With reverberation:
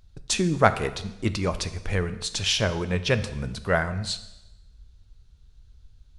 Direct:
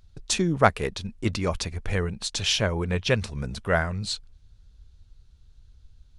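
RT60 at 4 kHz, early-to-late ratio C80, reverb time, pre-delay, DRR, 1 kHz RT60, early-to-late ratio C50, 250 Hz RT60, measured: 0.95 s, 15.5 dB, 0.95 s, 5 ms, 11.0 dB, 0.90 s, 13.5 dB, 0.95 s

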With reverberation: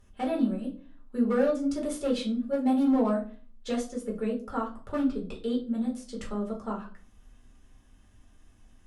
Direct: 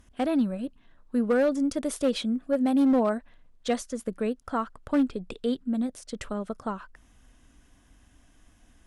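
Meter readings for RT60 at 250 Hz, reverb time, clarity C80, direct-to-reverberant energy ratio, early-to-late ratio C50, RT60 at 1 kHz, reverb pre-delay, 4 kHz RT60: 0.60 s, 0.40 s, 16.0 dB, -2.5 dB, 10.0 dB, 0.35 s, 5 ms, 0.30 s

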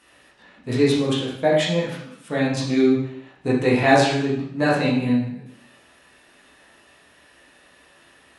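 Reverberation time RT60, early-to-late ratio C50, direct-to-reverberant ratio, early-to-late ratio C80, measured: 0.70 s, 2.5 dB, -6.5 dB, 6.0 dB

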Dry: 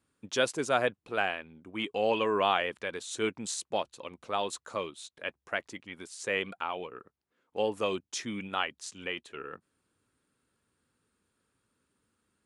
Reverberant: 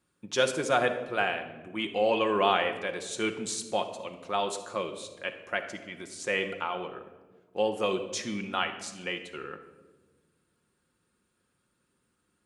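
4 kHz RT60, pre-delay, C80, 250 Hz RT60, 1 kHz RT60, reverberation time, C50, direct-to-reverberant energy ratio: 0.75 s, 6 ms, 11.5 dB, 2.0 s, 1.1 s, 1.3 s, 9.5 dB, 5.0 dB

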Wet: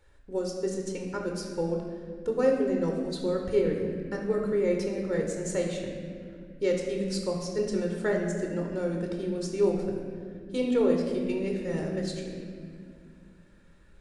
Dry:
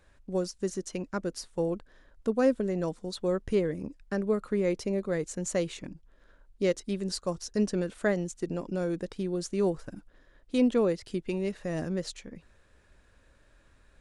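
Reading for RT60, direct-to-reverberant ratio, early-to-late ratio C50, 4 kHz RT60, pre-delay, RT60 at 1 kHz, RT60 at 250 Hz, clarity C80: 2.2 s, 1.0 dB, 3.0 dB, 1.5 s, 19 ms, 1.8 s, 3.3 s, 4.5 dB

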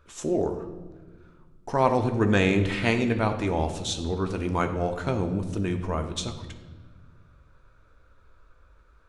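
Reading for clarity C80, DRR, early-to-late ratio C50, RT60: 11.0 dB, 5.5 dB, 9.5 dB, 1.3 s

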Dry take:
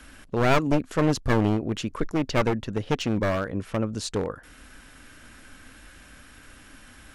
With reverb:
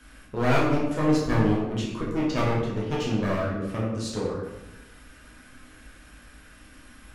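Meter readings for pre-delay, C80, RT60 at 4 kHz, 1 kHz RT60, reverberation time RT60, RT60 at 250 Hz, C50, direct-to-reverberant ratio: 7 ms, 4.5 dB, 0.65 s, 0.95 s, 1.0 s, 1.3 s, 2.0 dB, -5.5 dB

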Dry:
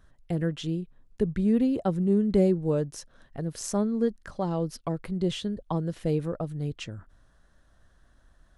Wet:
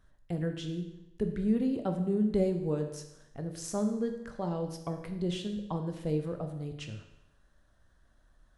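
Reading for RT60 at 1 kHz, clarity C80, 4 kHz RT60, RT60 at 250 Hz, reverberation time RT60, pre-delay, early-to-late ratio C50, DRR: 0.85 s, 10.5 dB, 0.85 s, 0.90 s, 0.85 s, 15 ms, 8.0 dB, 5.0 dB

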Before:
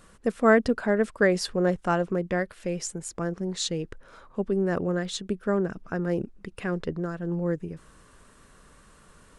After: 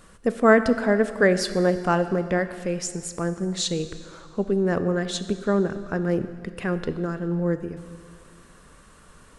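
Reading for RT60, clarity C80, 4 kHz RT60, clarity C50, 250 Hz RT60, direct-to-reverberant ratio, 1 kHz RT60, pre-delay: 2.1 s, 12.5 dB, 2.0 s, 12.0 dB, 2.1 s, 10.5 dB, 2.1 s, 7 ms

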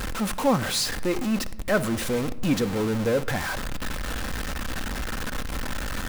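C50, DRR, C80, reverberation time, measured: 17.0 dB, 10.5 dB, 19.0 dB, 0.90 s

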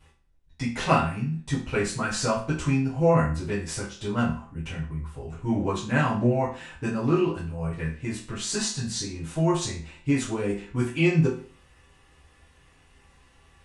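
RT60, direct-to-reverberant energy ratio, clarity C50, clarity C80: 0.40 s, -11.0 dB, 6.5 dB, 11.5 dB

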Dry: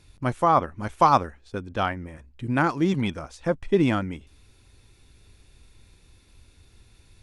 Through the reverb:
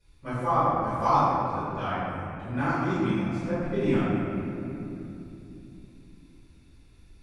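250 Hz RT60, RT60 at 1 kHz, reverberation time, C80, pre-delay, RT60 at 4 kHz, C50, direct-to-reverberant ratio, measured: 4.4 s, 2.6 s, 2.9 s, -2.0 dB, 3 ms, 1.7 s, -4.5 dB, -15.5 dB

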